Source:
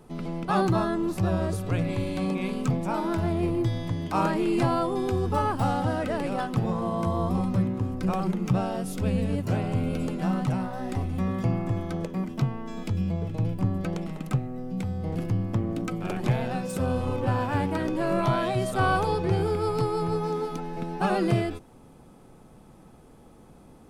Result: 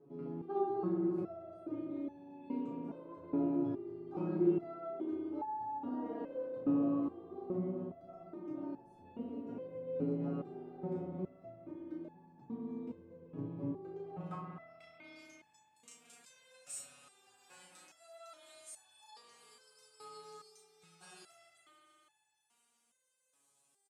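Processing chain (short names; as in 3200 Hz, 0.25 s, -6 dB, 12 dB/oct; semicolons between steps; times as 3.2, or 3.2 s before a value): doubler 35 ms -2.5 dB; compressor 2.5:1, threshold -24 dBFS, peak gain reduction 5.5 dB; band-pass sweep 350 Hz -> 7700 Hz, 13.81–15.41; reverb RT60 4.0 s, pre-delay 60 ms, DRR 0 dB; stepped resonator 2.4 Hz 140–870 Hz; gain +8.5 dB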